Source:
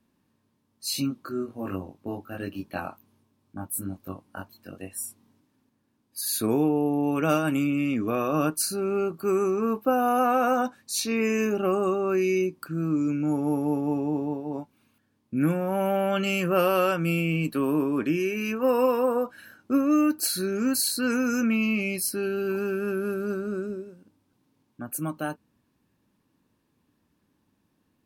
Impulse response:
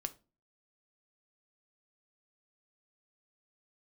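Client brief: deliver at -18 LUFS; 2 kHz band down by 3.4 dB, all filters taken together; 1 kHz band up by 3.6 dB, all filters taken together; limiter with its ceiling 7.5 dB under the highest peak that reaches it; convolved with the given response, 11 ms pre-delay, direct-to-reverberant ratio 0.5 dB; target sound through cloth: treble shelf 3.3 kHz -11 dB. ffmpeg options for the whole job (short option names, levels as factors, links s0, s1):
-filter_complex "[0:a]equalizer=f=1000:t=o:g=7.5,equalizer=f=2000:t=o:g=-4,alimiter=limit=0.178:level=0:latency=1,asplit=2[s0][s1];[1:a]atrim=start_sample=2205,adelay=11[s2];[s1][s2]afir=irnorm=-1:irlink=0,volume=1.06[s3];[s0][s3]amix=inputs=2:normalize=0,highshelf=f=3300:g=-11,volume=2"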